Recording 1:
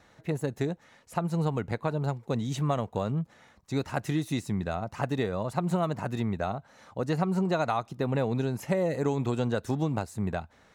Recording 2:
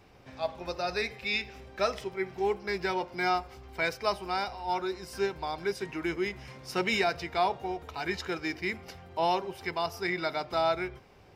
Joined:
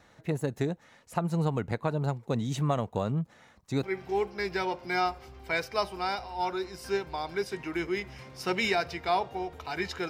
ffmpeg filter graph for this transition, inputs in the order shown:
-filter_complex "[0:a]apad=whole_dur=10.09,atrim=end=10.09,atrim=end=3.832[a];[1:a]atrim=start=2.118:end=8.38[b];[a][b]acrossfade=d=0.004:c1=hsin:c2=hsin"

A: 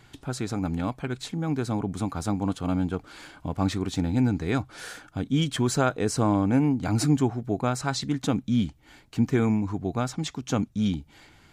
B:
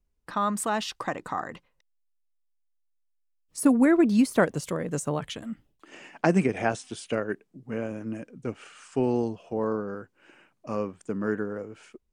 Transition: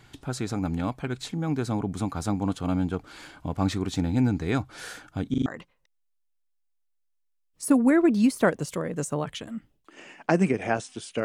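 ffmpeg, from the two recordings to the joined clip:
-filter_complex "[0:a]apad=whole_dur=11.24,atrim=end=11.24,asplit=4[a][b][c][d];[a]atrim=end=5.342[e];[b]atrim=start=5.298:end=5.342[f];[c]atrim=start=5.298:end=5.342[g];[d]atrim=start=5.298:end=5.342[h];[1:a]atrim=start=1.408:end=7.19[i];[e][f]acrossfade=d=0.004:c1=hsin:c2=hsin[j];[j][g]acrossfade=d=0.004:c1=hsin:c2=hsin[k];[k][h]acrossfade=d=0.004:c1=hsin:c2=hsin[l];[l][i]acrossfade=d=0.004:c1=hsin:c2=hsin"

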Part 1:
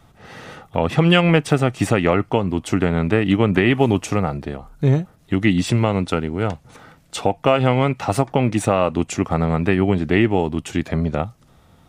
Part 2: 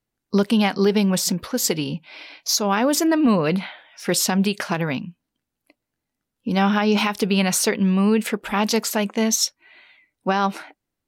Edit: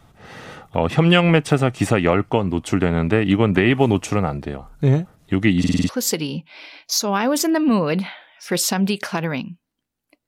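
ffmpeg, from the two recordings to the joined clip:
-filter_complex "[0:a]apad=whole_dur=10.27,atrim=end=10.27,asplit=6[a][b][c][d][e][f];[a]atrim=end=5.642[g];[b]atrim=start=5.588:end=5.642[h];[c]atrim=start=5.588:end=5.642[i];[d]atrim=start=5.588:end=5.642[j];[e]atrim=start=5.588:end=5.642[k];[f]atrim=start=5.588:end=5.642[l];[1:a]atrim=start=1.458:end=5.84[m];[g][h]acrossfade=d=0.004:c1=hsin:c2=hsin[n];[n][i]acrossfade=d=0.004:c1=hsin:c2=hsin[o];[o][j]acrossfade=d=0.004:c1=hsin:c2=hsin[p];[p][k]acrossfade=d=0.004:c1=hsin:c2=hsin[q];[q][l]acrossfade=d=0.004:c1=hsin:c2=hsin[r];[r][m]acrossfade=d=0.004:c1=hsin:c2=hsin"

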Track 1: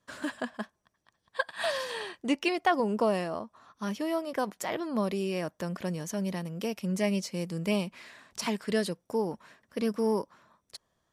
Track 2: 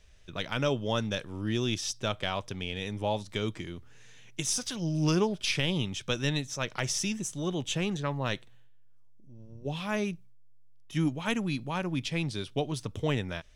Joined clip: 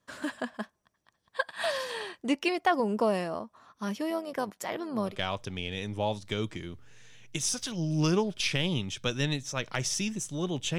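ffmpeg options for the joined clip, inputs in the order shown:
-filter_complex "[0:a]asettb=1/sr,asplit=3[a][b][c];[a]atrim=end=4.104[d];[b]atrim=start=4.1:end=5.16,asetpts=PTS-STARTPTS,afade=t=in:d=0.004:c=qsin,afade=t=out:st=1.056:d=0.004:c=qsin,tremolo=f=100:d=0.4[e];[c]atrim=start=5.156[f];[d][e]acrossfade=d=0.004:c1=hsin:c2=qsin[g];[g][f]acrossfade=d=0.004:c1=qsin:c2=hsin,apad=whole_dur=10.78,atrim=end=10.78,atrim=end=5.16,asetpts=PTS-STARTPTS[h];[1:a]atrim=start=2.1:end=7.82,asetpts=PTS-STARTPTS[i];[h][i]acrossfade=d=0.1:c1=tri:c2=tri"

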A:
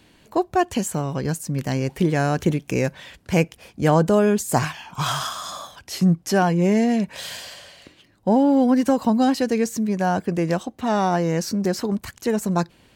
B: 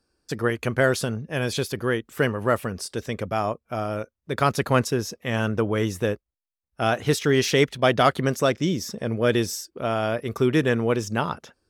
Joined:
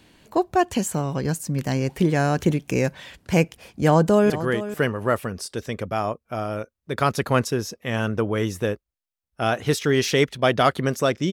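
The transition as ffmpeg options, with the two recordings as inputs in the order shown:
-filter_complex "[0:a]apad=whole_dur=11.32,atrim=end=11.32,atrim=end=4.302[a];[1:a]atrim=start=1.698:end=8.72[b];[a][b]acrossfade=d=0.004:c1=hsin:c2=hsin,asplit=2[c][d];[d]afade=t=in:st=3.75:d=0.01,afade=t=out:st=4.3:d=0.01,aecho=0:1:440|880:0.223872|0.0223872[e];[c][e]amix=inputs=2:normalize=0"

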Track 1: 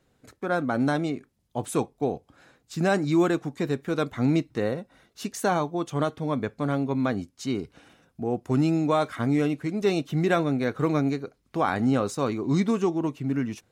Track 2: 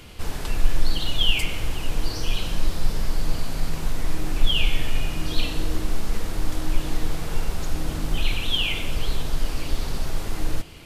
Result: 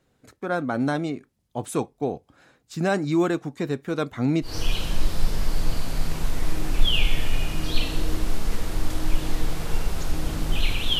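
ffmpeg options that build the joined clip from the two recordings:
-filter_complex "[0:a]apad=whole_dur=10.99,atrim=end=10.99,atrim=end=4.57,asetpts=PTS-STARTPTS[a];[1:a]atrim=start=2.03:end=8.61,asetpts=PTS-STARTPTS[b];[a][b]acrossfade=d=0.16:c1=tri:c2=tri"

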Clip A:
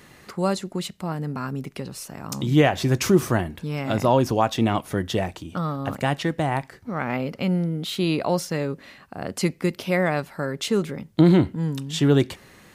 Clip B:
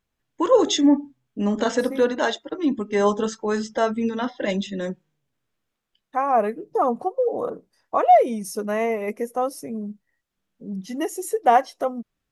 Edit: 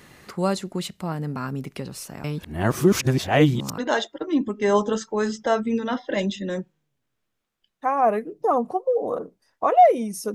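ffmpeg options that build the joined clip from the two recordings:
-filter_complex "[0:a]apad=whole_dur=10.34,atrim=end=10.34,asplit=2[a][b];[a]atrim=end=2.242[c];[b]atrim=start=2.238:end=3.782,asetpts=PTS-STARTPTS,areverse[d];[1:a]atrim=start=2.088:end=8.65[e];[c][d]acrossfade=d=0.004:c1=hsin:c2=hsin[f];[f][e]acrossfade=d=0.004:c1=hsin:c2=hsin"

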